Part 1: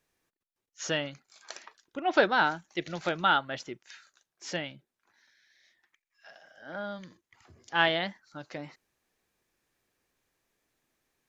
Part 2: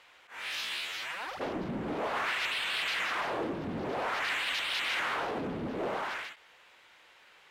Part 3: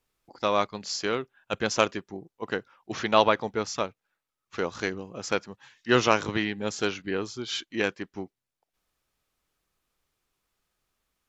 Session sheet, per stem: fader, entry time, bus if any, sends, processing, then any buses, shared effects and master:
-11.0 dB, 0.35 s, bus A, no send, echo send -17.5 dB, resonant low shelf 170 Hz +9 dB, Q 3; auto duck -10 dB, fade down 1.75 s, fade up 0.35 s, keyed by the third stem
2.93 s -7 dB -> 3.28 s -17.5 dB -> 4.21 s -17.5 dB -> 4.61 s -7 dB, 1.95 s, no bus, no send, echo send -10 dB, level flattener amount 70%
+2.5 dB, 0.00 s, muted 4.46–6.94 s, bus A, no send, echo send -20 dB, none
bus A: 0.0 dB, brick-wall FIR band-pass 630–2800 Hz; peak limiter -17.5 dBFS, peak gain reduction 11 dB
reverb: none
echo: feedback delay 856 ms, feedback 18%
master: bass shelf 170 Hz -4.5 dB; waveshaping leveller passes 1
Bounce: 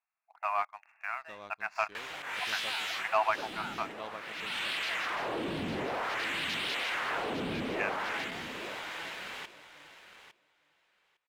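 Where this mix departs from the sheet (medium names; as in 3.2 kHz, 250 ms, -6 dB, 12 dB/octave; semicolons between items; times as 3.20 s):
stem 1: missing resonant low shelf 170 Hz +9 dB, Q 3; stem 3 +2.5 dB -> -7.0 dB; master: missing bass shelf 170 Hz -4.5 dB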